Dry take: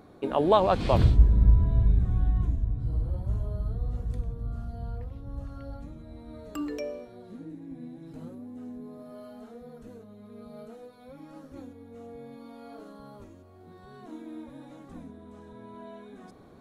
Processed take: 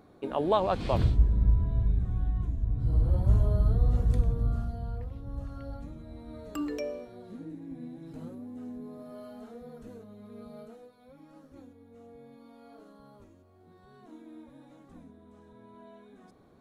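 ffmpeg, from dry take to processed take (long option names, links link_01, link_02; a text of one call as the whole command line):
ffmpeg -i in.wav -af "volume=7dB,afade=type=in:start_time=2.53:duration=0.75:silence=0.266073,afade=type=out:start_time=4.41:duration=0.4:silence=0.446684,afade=type=out:start_time=10.41:duration=0.54:silence=0.446684" out.wav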